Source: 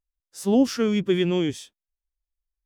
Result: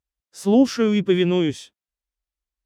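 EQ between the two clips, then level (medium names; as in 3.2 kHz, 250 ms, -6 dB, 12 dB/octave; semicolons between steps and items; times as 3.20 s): high-pass 48 Hz; treble shelf 8.8 kHz -9.5 dB; +3.5 dB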